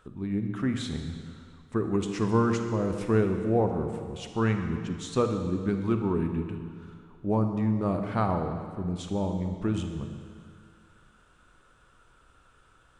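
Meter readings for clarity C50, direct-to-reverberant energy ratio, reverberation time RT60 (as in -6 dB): 6.0 dB, 5.5 dB, 2.1 s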